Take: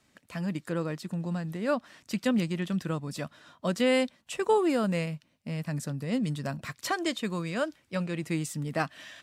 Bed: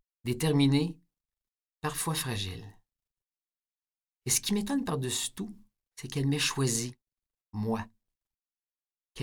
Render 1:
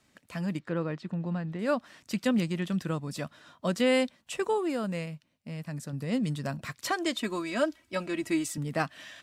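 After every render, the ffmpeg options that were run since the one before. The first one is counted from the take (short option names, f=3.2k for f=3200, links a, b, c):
-filter_complex "[0:a]asettb=1/sr,asplit=3[a][b][c];[a]atrim=end=0.594[d];[b]atrim=start=0.59:end=1.59,asetpts=PTS-STARTPTS,afade=t=in:d=0.004:c=qsin,afade=t=out:st=0.996:d=0.004:c=qsin,lowpass=3.2k[e];[c]atrim=start=1.586[f];[d][e]acrossfade=d=0.004:c1=hsin:c2=qsin[g];[g][f]acrossfade=d=0.004:c1=qsin:c2=hsin,asettb=1/sr,asplit=3[h][i][j];[h]atrim=end=7.154[k];[i]atrim=start=7.15:end=8.58,asetpts=PTS-STARTPTS,afade=t=in:d=0.004:c=qsin,afade=t=out:st=1.426:d=0.004:c=qsin,aecho=1:1:3.1:0.8,atrim=end_sample=63063[l];[j]atrim=start=8.576[m];[k][l]acrossfade=d=0.004:c1=hsin:c2=qsin[n];[n][m]acrossfade=d=0.004:c1=qsin:c2=hsin,asplit=3[o][p][q];[o]atrim=end=4.492[r];[p]atrim=start=4.488:end=5.932,asetpts=PTS-STARTPTS,volume=-4.5dB[s];[q]atrim=start=5.928[t];[r][s]acrossfade=d=0.004:c1=hsin:c2=hsin[u];[u][t]acrossfade=d=0.004:c1=hsin:c2=hsin"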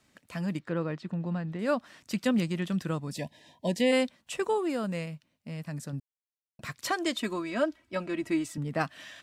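-filter_complex "[0:a]asplit=3[a][b][c];[a]afade=t=out:st=3.13:d=0.02[d];[b]asuperstop=centerf=1300:order=20:qfactor=2,afade=t=in:st=3.13:d=0.02,afade=t=out:st=3.91:d=0.02[e];[c]afade=t=in:st=3.91:d=0.02[f];[d][e][f]amix=inputs=3:normalize=0,asettb=1/sr,asplit=3[g][h][i];[g]atrim=end=7.334[j];[h]atrim=start=7.33:end=8.81,asetpts=PTS-STARTPTS,afade=t=in:d=0.004:c=qsin,afade=t=out:st=1.476:d=0.004:c=qsin,highshelf=f=3.9k:g=-9[k];[i]atrim=start=8.806[l];[j][k]acrossfade=d=0.004:c1=hsin:c2=qsin[m];[m][l]acrossfade=d=0.004:c1=qsin:c2=hsin,asplit=3[n][o][p];[n]atrim=end=6,asetpts=PTS-STARTPTS,afade=t=out:st=5.996:d=0.004:c=hsin[q];[o]atrim=start=6:end=6.59,asetpts=PTS-STARTPTS,volume=0[r];[p]atrim=start=6.59,asetpts=PTS-STARTPTS,afade=t=in:d=0.004:c=hsin[s];[q][r][s]concat=n=3:v=0:a=1"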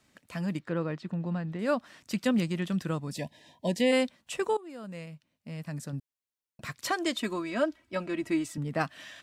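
-filter_complex "[0:a]asplit=2[a][b];[a]atrim=end=4.57,asetpts=PTS-STARTPTS,afade=t=out:st=4.566:d=0.004:c=hsin:silence=0.105925[c];[b]atrim=start=4.57,asetpts=PTS-STARTPTS,afade=t=in:d=1.12:silence=0.105925[d];[c][d]concat=n=2:v=0:a=1"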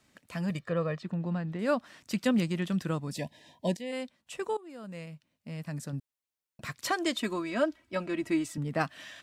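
-filter_complex "[0:a]asettb=1/sr,asplit=3[a][b][c];[a]atrim=end=0.504[d];[b]atrim=start=0.5:end=1.03,asetpts=PTS-STARTPTS,afade=t=in:d=0.004:c=qsin,afade=t=out:st=0.526:d=0.004:c=qsin,aecho=1:1:1.7:0.65,atrim=end_sample=23373[e];[c]atrim=start=1.026[f];[d][e]acrossfade=d=0.004:c1=hsin:c2=qsin[g];[g][f]acrossfade=d=0.004:c1=qsin:c2=hsin,asplit=2[h][i];[h]atrim=end=3.77,asetpts=PTS-STARTPTS,afade=t=out:st=3.766:d=0.004:c=hsin:silence=0.158489[j];[i]atrim=start=3.77,asetpts=PTS-STARTPTS,afade=t=in:d=1.34:silence=0.158489[k];[j][k]concat=n=2:v=0:a=1"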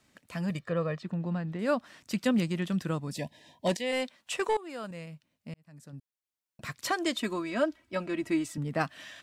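-filter_complex "[0:a]asettb=1/sr,asplit=3[a][b][c];[a]atrim=end=3.664[d];[b]atrim=start=3.66:end=4.91,asetpts=PTS-STARTPTS,afade=t=in:d=0.004:c=qsin,afade=t=out:st=1.246:d=0.004:c=qsin,asplit=2[e][f];[f]highpass=f=720:p=1,volume=16dB,asoftclip=type=tanh:threshold=-17dB[g];[e][g]amix=inputs=2:normalize=0,lowpass=f=7.8k:p=1,volume=-6dB[h];[c]atrim=start=4.906[i];[d][h]acrossfade=d=0.004:c1=hsin:c2=qsin[j];[j][i]acrossfade=d=0.004:c1=qsin:c2=hsin,asplit=2[k][l];[k]atrim=end=5.54,asetpts=PTS-STARTPTS,afade=t=out:st=5.536:d=0.004:c=hsin[m];[l]atrim=start=5.54,asetpts=PTS-STARTPTS,afade=t=in:d=1.14[n];[m][n]concat=n=2:v=0:a=1"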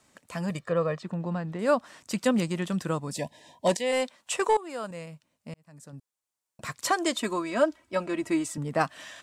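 -af "equalizer=f=500:t=o:w=1:g=4,equalizer=f=1k:t=o:w=1:g=6,equalizer=f=8k:t=o:w=1:g=8"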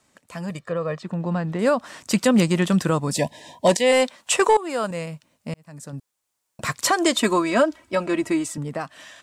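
-af "alimiter=limit=-18.5dB:level=0:latency=1:release=124,dynaudnorm=f=240:g=11:m=10dB"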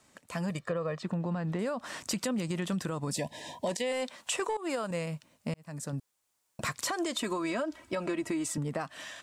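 -af "alimiter=limit=-18dB:level=0:latency=1:release=105,acompressor=threshold=-30dB:ratio=4"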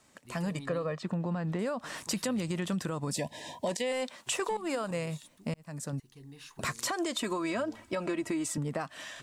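-filter_complex "[1:a]volume=-21.5dB[a];[0:a][a]amix=inputs=2:normalize=0"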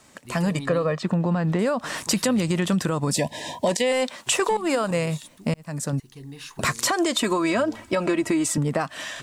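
-af "volume=10dB"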